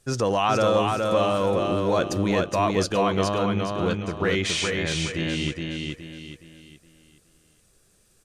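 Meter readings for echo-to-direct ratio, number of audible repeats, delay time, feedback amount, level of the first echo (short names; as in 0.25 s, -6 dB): -3.0 dB, 4, 0.418 s, 37%, -3.5 dB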